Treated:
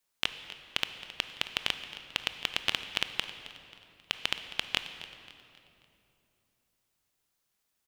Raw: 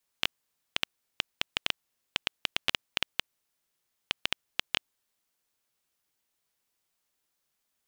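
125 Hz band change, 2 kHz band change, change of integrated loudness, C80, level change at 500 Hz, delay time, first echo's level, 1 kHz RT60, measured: +1.0 dB, +0.5 dB, 0.0 dB, 9.5 dB, +0.5 dB, 268 ms, -16.5 dB, 2.6 s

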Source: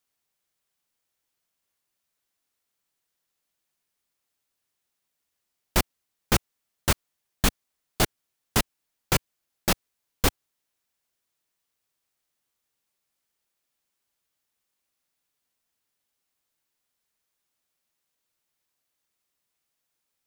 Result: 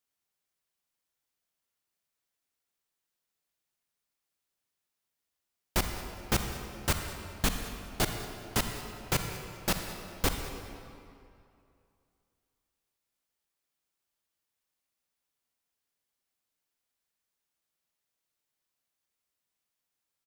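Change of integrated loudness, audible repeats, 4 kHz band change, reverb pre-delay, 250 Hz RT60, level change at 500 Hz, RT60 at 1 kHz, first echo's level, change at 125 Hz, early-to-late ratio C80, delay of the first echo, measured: -6.0 dB, 1, -5.0 dB, 38 ms, 2.4 s, -4.5 dB, 2.6 s, -18.5 dB, -4.5 dB, 6.0 dB, 201 ms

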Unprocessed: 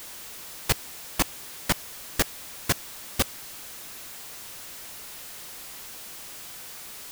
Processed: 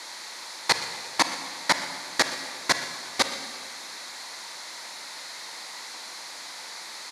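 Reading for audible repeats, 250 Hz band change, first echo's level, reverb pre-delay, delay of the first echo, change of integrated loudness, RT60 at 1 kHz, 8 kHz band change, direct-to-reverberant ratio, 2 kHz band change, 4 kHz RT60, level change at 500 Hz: 1, -2.0 dB, -16.5 dB, 30 ms, 121 ms, +3.0 dB, 1.8 s, +0.5 dB, 7.5 dB, +6.5 dB, 1.7 s, +2.0 dB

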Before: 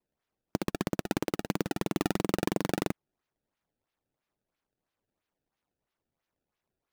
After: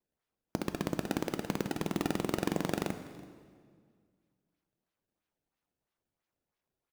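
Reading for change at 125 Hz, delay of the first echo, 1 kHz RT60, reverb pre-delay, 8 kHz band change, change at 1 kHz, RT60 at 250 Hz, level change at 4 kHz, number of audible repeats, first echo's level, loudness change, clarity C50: -2.0 dB, 330 ms, 1.8 s, 10 ms, -2.5 dB, -2.5 dB, 2.3 s, -2.5 dB, 1, -22.0 dB, -2.5 dB, 10.0 dB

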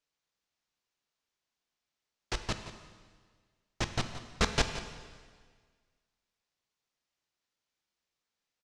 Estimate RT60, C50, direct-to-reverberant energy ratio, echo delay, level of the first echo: 1.7 s, 8.0 dB, 6.5 dB, 173 ms, -13.0 dB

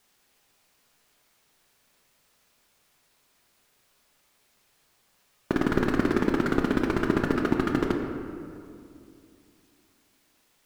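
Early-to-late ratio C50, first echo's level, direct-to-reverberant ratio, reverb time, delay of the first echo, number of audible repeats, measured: 4.5 dB, no echo, 2.0 dB, 2.5 s, no echo, no echo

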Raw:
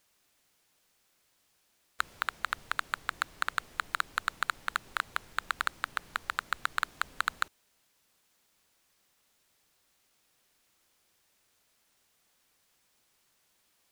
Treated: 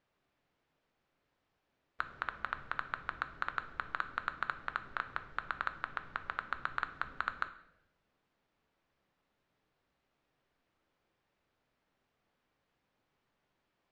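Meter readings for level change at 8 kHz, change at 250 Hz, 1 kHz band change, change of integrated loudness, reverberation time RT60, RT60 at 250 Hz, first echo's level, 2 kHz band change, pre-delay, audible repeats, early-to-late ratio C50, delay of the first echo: under -25 dB, 0.0 dB, -4.0 dB, -5.0 dB, 0.95 s, 1.2 s, no echo, -5.0 dB, 7 ms, no echo, 13.0 dB, no echo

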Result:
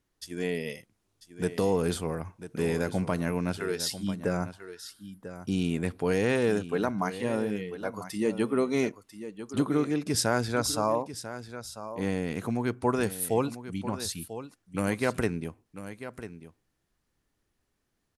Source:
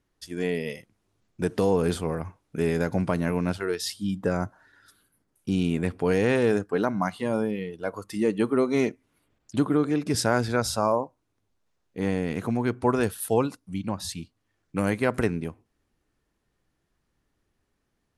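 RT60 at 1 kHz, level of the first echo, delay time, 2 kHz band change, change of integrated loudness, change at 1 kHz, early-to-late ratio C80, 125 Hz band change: no reverb, -12.5 dB, 994 ms, -2.0 dB, -3.0 dB, -3.0 dB, no reverb, -3.5 dB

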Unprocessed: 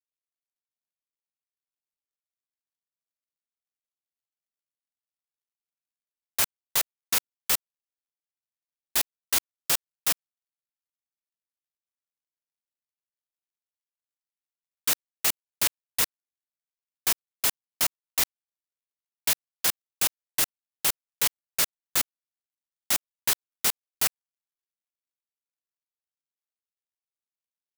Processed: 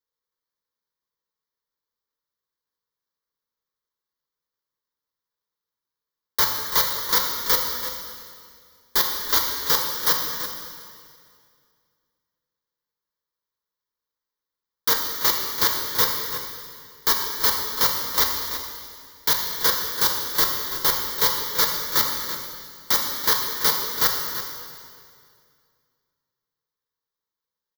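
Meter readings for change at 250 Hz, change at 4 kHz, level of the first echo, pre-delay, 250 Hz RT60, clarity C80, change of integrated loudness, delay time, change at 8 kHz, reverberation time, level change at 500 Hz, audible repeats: +7.5 dB, +7.0 dB, -11.5 dB, 3 ms, 2.4 s, 4.0 dB, +5.5 dB, 334 ms, +1.0 dB, 2.2 s, +10.5 dB, 1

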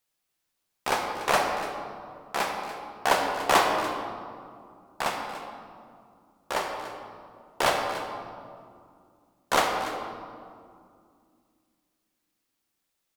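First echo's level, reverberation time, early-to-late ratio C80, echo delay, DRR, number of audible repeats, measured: -14.5 dB, 2.3 s, 4.5 dB, 290 ms, 1.0 dB, 1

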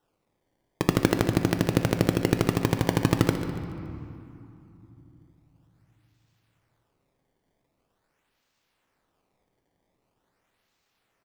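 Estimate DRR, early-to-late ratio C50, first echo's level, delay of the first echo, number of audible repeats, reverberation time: 5.5 dB, 7.0 dB, -12.5 dB, 142 ms, 2, 2.8 s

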